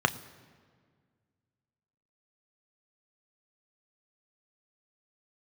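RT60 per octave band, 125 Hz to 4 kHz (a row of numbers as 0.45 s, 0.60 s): 2.3 s, 2.3 s, 1.9 s, 1.7 s, 1.5 s, 1.3 s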